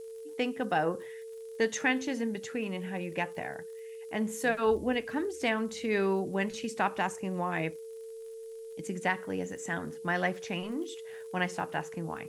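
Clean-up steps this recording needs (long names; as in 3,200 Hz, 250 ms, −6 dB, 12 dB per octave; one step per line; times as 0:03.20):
click removal
notch filter 450 Hz, Q 30
noise reduction from a noise print 30 dB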